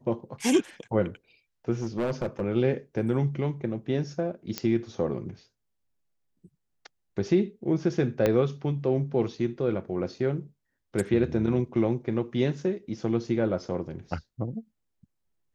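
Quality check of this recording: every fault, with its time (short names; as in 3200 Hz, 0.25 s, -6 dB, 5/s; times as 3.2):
1.81–2.41 clipped -23.5 dBFS
4.58 pop -12 dBFS
8.26 pop -11 dBFS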